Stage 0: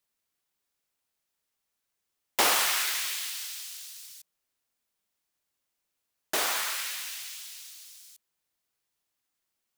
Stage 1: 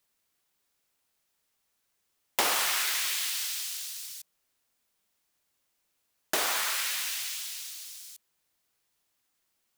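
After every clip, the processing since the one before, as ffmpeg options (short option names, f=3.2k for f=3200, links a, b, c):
-af "acompressor=threshold=-33dB:ratio=2.5,volume=5.5dB"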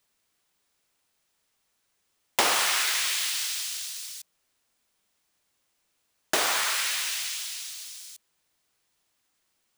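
-af "equalizer=f=15k:w=1.6:g=-11.5,volume=4dB"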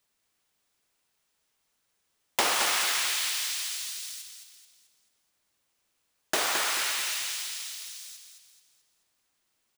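-af "aecho=1:1:217|434|651|868|1085:0.473|0.199|0.0835|0.0351|0.0147,volume=-2.5dB"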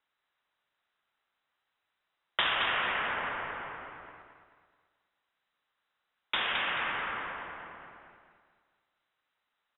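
-af "aexciter=amount=2.1:drive=2.3:freq=2.2k,lowpass=f=3.4k:t=q:w=0.5098,lowpass=f=3.4k:t=q:w=0.6013,lowpass=f=3.4k:t=q:w=0.9,lowpass=f=3.4k:t=q:w=2.563,afreqshift=-4000,volume=-3dB"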